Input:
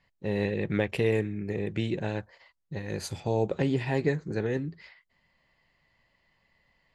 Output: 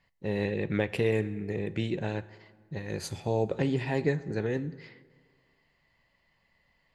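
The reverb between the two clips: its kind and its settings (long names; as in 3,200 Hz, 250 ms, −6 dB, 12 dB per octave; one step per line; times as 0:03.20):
dense smooth reverb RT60 1.7 s, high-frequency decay 0.65×, DRR 16 dB
level −1 dB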